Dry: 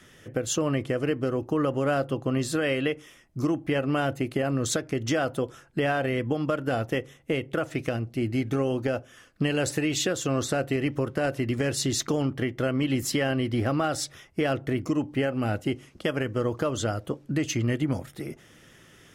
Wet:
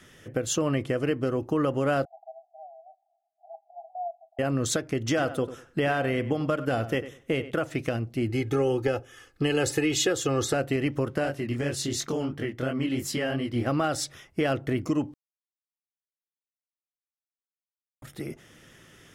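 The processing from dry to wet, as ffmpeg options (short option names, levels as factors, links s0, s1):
-filter_complex "[0:a]asettb=1/sr,asplit=3[s0][s1][s2];[s0]atrim=end=2.054[s3];[s1]atrim=start=2.05:end=4.39,asetpts=PTS-STARTPTS,afade=t=in:d=0.004:c=qsin,afade=t=out:st=2.336:d=0.004:c=qsin,asuperpass=centerf=720:order=12:qfactor=4.3[s4];[s2]atrim=start=4.386[s5];[s3][s4]acrossfade=d=0.004:c1=hsin:c2=qsin[s6];[s6][s5]acrossfade=d=0.004:c1=qsin:c2=hsin,asettb=1/sr,asplit=3[s7][s8][s9];[s7]atrim=end=5.074[s10];[s8]atrim=start=5.07:end=7.51,asetpts=PTS-STARTPTS,afade=t=in:d=0.004:c=qsin,afade=t=out:st=2.436:d=0.004:c=qsin,asplit=2[s11][s12];[s12]adelay=97,lowpass=f=3100:p=1,volume=0.224,asplit=2[s13][s14];[s14]adelay=97,lowpass=f=3100:p=1,volume=0.22,asplit=2[s15][s16];[s16]adelay=97,lowpass=f=3100:p=1,volume=0.22[s17];[s11][s13][s15][s17]amix=inputs=4:normalize=0,atrim=end_sample=107604[s18];[s9]atrim=start=7.506[s19];[s10][s18]acrossfade=d=0.004:c1=hsin:c2=qsin[s20];[s20][s19]acrossfade=d=0.004:c1=qsin:c2=hsin,asettb=1/sr,asplit=3[s21][s22][s23];[s21]atrim=end=8.294[s24];[s22]atrim=start=8.29:end=10.54,asetpts=PTS-STARTPTS,afade=t=in:d=0.004:c=qsin,afade=t=out:st=2.246:d=0.004:c=qsin,aecho=1:1:2.4:0.65,atrim=end_sample=99225[s25];[s23]atrim=start=10.536[s26];[s24][s25]acrossfade=d=0.004:c1=hsin:c2=qsin[s27];[s27][s26]acrossfade=d=0.004:c1=qsin:c2=hsin,asplit=3[s28][s29][s30];[s28]afade=t=out:st=11.23:d=0.02[s31];[s29]flanger=delay=20:depth=5.6:speed=2.9,afade=t=in:st=11.23:d=0.02,afade=t=out:st=13.66:d=0.02[s32];[s30]afade=t=in:st=13.66:d=0.02[s33];[s31][s32][s33]amix=inputs=3:normalize=0,asplit=3[s34][s35][s36];[s34]atrim=end=15.14,asetpts=PTS-STARTPTS,afade=t=out:st=15.136:d=0.004:c=hsin[s37];[s35]atrim=start=15.14:end=18.02,asetpts=PTS-STARTPTS,volume=0[s38];[s36]atrim=start=18.02,asetpts=PTS-STARTPTS,afade=t=in:d=0.004:c=hsin[s39];[s37][s38][s39]concat=n=3:v=0:a=1"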